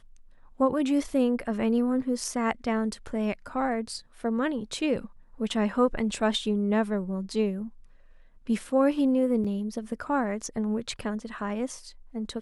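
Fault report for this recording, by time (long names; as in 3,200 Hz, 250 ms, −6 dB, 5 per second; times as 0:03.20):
0:09.44–0:09.45: drop-out 5.5 ms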